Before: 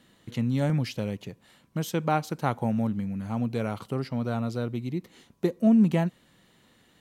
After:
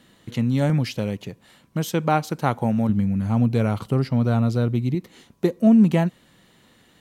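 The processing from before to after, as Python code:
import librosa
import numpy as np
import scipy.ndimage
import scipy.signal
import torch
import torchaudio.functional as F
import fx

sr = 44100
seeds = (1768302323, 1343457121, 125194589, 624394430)

y = fx.low_shelf(x, sr, hz=160.0, db=10.0, at=(2.89, 4.95))
y = F.gain(torch.from_numpy(y), 5.0).numpy()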